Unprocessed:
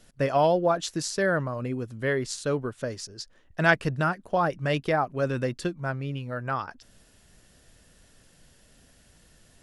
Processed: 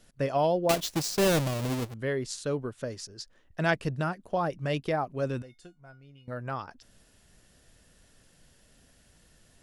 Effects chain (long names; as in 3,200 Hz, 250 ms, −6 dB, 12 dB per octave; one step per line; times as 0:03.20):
0:00.69–0:01.94: each half-wave held at its own peak
dynamic equaliser 1,500 Hz, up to −5 dB, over −40 dBFS, Q 1.2
0:05.42–0:06.28: tuned comb filter 720 Hz, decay 0.22 s, harmonics all, mix 90%
level −3 dB